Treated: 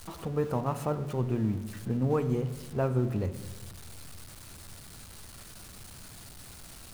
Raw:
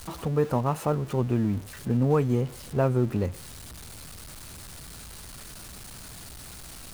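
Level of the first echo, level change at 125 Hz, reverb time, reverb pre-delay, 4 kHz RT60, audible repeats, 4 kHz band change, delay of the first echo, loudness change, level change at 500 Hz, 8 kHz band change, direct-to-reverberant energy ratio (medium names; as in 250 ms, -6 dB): no echo, -4.0 dB, 1.0 s, 9 ms, 0.75 s, no echo, -5.0 dB, no echo, -4.5 dB, -4.5 dB, -5.0 dB, 10.5 dB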